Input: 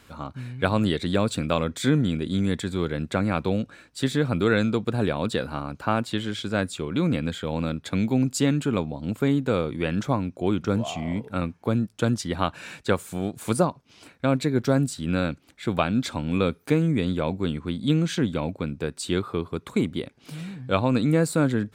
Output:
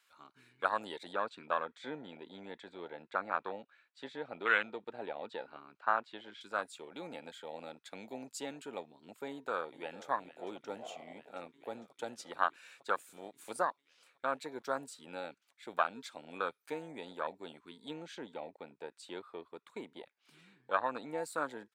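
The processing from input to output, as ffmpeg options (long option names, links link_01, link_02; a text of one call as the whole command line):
ffmpeg -i in.wav -filter_complex "[0:a]asettb=1/sr,asplit=3[link_01][link_02][link_03];[link_01]atrim=end=1.134[link_04];[link_02]atrim=start=1.13:end=6.41,asetpts=PTS-STARTPTS,afade=type=in:duration=0.004:curve=qsin,afade=type=out:start_time=5.276:duration=0.004:curve=qsin,lowpass=3300[link_05];[link_03]atrim=start=6.406[link_06];[link_04][link_05]acrossfade=duration=0.004:curve1=hsin:curve2=qsin[link_07];[link_07][link_06]acrossfade=duration=0.004:curve1=qsin:curve2=hsin,asplit=2[link_08][link_09];[link_09]afade=type=in:start_time=9.28:duration=0.01,afade=type=out:start_time=10.12:duration=0.01,aecho=0:1:450|900|1350|1800|2250|2700|3150|3600|4050|4500|4950|5400:0.211349|0.179647|0.1527|0.129795|0.110325|0.0937766|0.0797101|0.0677536|0.0575906|0.048952|0.0416092|0.0353678[link_10];[link_08][link_10]amix=inputs=2:normalize=0,asettb=1/sr,asplit=3[link_11][link_12][link_13];[link_11]atrim=end=17.904[link_14];[link_12]atrim=start=17.9:end=21.18,asetpts=PTS-STARTPTS,afade=type=in:duration=0.004:curve=qsin,afade=type=out:start_time=3.276:duration=0.004:curve=qsin,aemphasis=mode=reproduction:type=cd[link_15];[link_13]atrim=start=21.176[link_16];[link_14][link_15]acrossfade=duration=0.004:curve1=hsin:curve2=qsin[link_17];[link_17][link_16]acrossfade=duration=0.004:curve1=qsin:curve2=hsin,afwtdn=0.0501,highpass=1200,volume=1.5dB" out.wav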